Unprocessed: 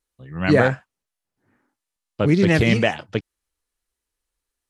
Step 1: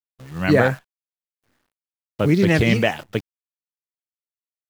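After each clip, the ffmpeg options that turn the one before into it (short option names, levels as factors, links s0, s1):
-af "acrusher=bits=8:dc=4:mix=0:aa=0.000001"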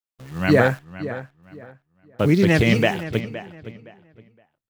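-filter_complex "[0:a]asplit=2[s0][s1];[s1]adelay=516,lowpass=f=3200:p=1,volume=0.211,asplit=2[s2][s3];[s3]adelay=516,lowpass=f=3200:p=1,volume=0.26,asplit=2[s4][s5];[s5]adelay=516,lowpass=f=3200:p=1,volume=0.26[s6];[s0][s2][s4][s6]amix=inputs=4:normalize=0"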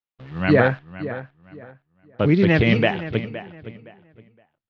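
-af "lowpass=f=3900:w=0.5412,lowpass=f=3900:w=1.3066"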